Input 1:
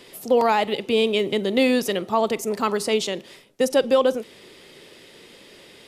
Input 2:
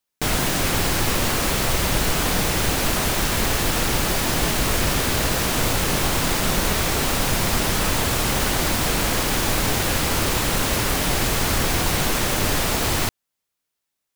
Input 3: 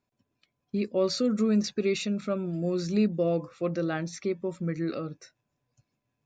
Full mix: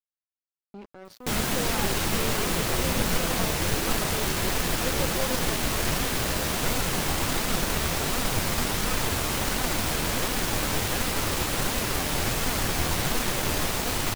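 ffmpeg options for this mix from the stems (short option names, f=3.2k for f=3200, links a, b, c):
-filter_complex "[0:a]adelay=1250,volume=-14.5dB[a];[1:a]acompressor=mode=upward:threshold=-38dB:ratio=2.5,flanger=delay=3.9:depth=9.8:regen=52:speed=1.4:shape=sinusoidal,adelay=1050,volume=0.5dB[b];[2:a]highshelf=f=4.1k:g=-10.5,alimiter=level_in=3.5dB:limit=-24dB:level=0:latency=1:release=16,volume=-3.5dB,volume=-1.5dB[c];[a][b][c]amix=inputs=3:normalize=0,aeval=exprs='sgn(val(0))*max(abs(val(0))-0.0158,0)':c=same"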